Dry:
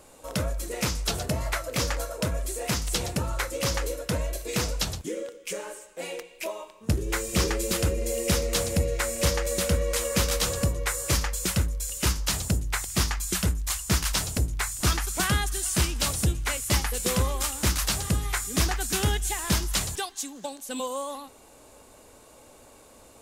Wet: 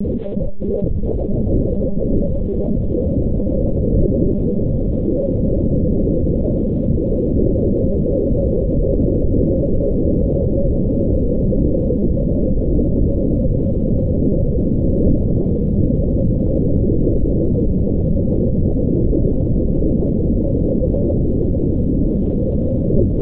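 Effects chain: fade-in on the opening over 0.71 s; wind noise 300 Hz -27 dBFS; de-hum 78.84 Hz, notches 4; reverb removal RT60 0.72 s; elliptic low-pass 540 Hz, stop band 60 dB; word length cut 12-bit, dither none; echo that smears into a reverb 1926 ms, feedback 68%, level -4 dB; monotone LPC vocoder at 8 kHz 200 Hz; level flattener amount 70%

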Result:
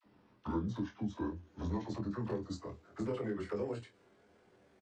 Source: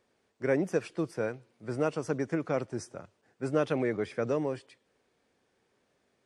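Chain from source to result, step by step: gliding tape speed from 93% -> 167%; comb 6 ms, depth 59%; compression 6:1, threshold -42 dBFS, peak gain reduction 21 dB; hard clipper -34.5 dBFS, distortion -23 dB; phase dispersion lows, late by 51 ms, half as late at 850 Hz; pitch shift -9 st; vibrato 0.39 Hz 22 cents; early reflections 24 ms -4.5 dB, 50 ms -12.5 dB; tape noise reduction on one side only decoder only; trim +6 dB

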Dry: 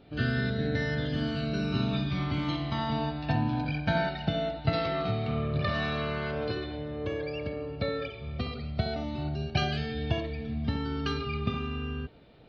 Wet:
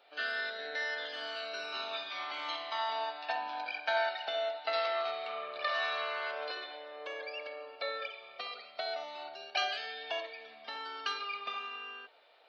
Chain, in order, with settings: high-pass 630 Hz 24 dB/octave

